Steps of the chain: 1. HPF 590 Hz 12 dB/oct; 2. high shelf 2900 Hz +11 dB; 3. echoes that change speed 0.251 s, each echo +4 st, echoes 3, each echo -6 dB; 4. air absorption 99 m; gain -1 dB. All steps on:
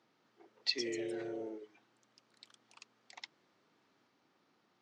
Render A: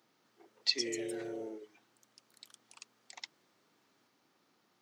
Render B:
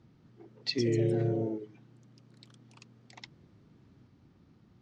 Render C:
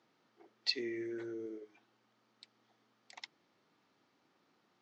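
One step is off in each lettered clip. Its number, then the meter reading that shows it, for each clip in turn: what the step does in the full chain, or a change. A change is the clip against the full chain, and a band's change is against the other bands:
4, 8 kHz band +7.0 dB; 1, 125 Hz band +25.0 dB; 3, 8 kHz band -7.0 dB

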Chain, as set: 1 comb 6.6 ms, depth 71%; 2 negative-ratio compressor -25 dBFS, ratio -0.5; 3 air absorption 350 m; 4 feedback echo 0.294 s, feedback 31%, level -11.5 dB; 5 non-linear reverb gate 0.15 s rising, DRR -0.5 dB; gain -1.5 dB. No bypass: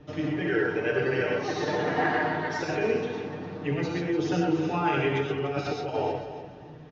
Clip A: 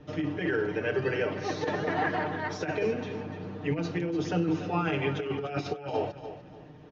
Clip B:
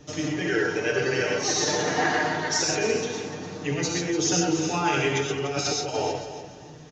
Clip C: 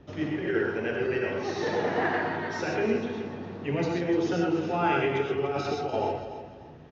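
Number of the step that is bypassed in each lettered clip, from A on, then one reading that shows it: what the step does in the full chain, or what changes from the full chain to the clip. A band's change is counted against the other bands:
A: 5, 125 Hz band +1.5 dB; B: 3, 4 kHz band +10.0 dB; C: 1, 125 Hz band -2.5 dB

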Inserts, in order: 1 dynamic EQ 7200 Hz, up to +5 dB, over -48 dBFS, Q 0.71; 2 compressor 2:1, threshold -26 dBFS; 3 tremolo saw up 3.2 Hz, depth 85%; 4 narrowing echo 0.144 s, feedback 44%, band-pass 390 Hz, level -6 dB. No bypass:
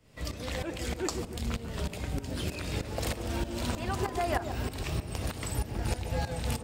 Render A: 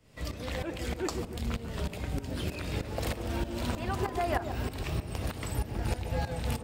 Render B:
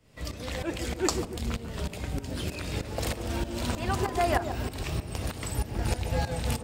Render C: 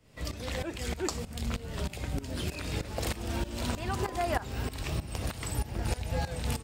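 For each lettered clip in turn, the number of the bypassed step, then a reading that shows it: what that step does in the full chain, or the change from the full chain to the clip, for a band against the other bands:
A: 1, crest factor change -3.0 dB; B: 2, crest factor change +3.5 dB; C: 4, echo-to-direct -11.5 dB to none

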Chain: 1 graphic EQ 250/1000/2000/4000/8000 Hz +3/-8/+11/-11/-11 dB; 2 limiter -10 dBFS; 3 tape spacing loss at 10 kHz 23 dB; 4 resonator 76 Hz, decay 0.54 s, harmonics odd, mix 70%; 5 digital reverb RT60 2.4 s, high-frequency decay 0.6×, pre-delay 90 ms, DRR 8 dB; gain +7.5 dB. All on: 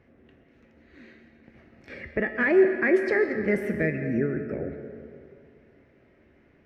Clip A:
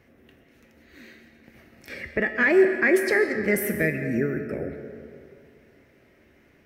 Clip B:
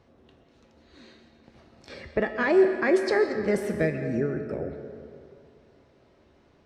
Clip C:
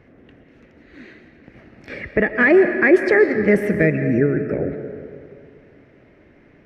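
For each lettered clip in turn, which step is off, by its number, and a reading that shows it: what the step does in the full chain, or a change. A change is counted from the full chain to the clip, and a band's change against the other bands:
3, 2 kHz band +3.5 dB; 1, 1 kHz band +5.5 dB; 4, momentary loudness spread change +3 LU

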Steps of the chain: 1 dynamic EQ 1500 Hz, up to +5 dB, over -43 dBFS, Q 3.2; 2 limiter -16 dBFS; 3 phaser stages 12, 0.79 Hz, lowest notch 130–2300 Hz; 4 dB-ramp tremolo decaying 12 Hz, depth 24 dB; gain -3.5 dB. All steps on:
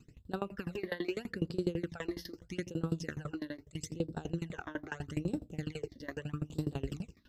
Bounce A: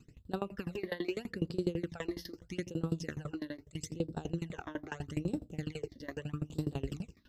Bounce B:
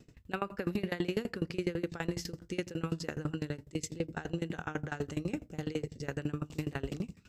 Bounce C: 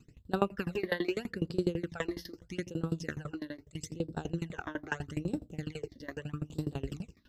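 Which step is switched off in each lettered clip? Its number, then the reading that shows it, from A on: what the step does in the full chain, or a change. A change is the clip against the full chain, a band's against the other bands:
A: 1, 2 kHz band -2.0 dB; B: 3, 8 kHz band +2.5 dB; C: 2, crest factor change +5.0 dB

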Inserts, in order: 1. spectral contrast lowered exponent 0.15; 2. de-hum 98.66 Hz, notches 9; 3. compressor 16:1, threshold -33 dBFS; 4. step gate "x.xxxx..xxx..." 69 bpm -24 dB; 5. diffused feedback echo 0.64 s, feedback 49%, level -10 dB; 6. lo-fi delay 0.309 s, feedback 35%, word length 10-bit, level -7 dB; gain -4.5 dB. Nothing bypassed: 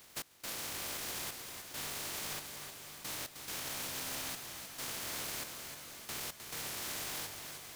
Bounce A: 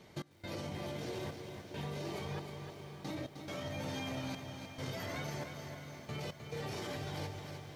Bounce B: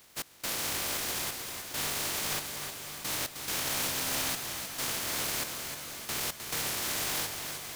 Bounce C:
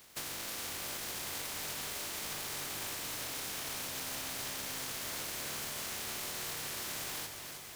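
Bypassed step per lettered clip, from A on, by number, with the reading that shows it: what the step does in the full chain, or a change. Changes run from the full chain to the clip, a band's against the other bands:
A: 1, 8 kHz band -18.5 dB; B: 3, mean gain reduction 7.5 dB; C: 4, momentary loudness spread change -6 LU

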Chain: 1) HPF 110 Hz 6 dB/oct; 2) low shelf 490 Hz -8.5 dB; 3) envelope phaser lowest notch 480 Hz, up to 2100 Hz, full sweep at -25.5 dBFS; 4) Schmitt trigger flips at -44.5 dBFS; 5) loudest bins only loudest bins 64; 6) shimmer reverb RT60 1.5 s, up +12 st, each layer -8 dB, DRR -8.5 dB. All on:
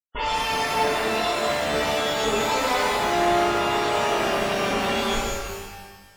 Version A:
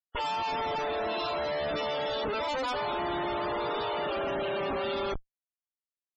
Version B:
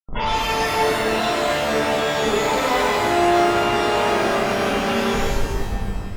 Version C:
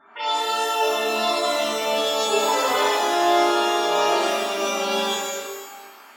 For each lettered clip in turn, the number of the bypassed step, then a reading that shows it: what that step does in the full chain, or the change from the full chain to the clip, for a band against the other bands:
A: 6, 500 Hz band +2.5 dB; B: 2, 125 Hz band +4.0 dB; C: 4, distortion -2 dB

